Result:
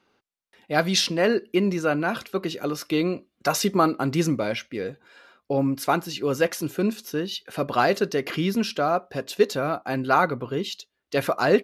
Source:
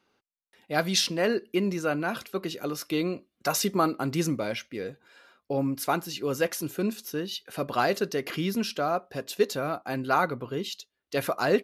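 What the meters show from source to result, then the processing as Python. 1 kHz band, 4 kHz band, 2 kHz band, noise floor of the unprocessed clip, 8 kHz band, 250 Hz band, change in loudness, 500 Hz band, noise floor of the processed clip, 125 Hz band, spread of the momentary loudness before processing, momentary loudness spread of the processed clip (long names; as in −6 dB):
+4.5 dB, +3.0 dB, +4.0 dB, −83 dBFS, +1.0 dB, +4.5 dB, +4.0 dB, +4.5 dB, −79 dBFS, +4.5 dB, 9 LU, 8 LU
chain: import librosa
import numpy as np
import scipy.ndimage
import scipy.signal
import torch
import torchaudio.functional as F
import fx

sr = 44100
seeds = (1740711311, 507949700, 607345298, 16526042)

y = fx.high_shelf(x, sr, hz=7300.0, db=-7.5)
y = y * librosa.db_to_amplitude(4.5)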